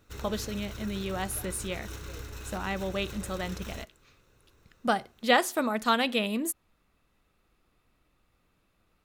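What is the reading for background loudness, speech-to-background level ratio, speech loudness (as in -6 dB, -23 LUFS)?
-42.5 LUFS, 12.0 dB, -30.5 LUFS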